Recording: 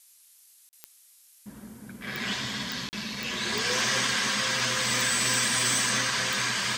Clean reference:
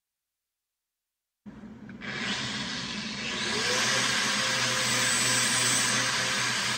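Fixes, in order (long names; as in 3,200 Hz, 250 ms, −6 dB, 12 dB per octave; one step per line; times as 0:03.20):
clipped peaks rebuilt −18 dBFS
click removal
repair the gap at 0:00.69/0:02.89, 39 ms
broadband denoise 30 dB, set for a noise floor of −57 dBFS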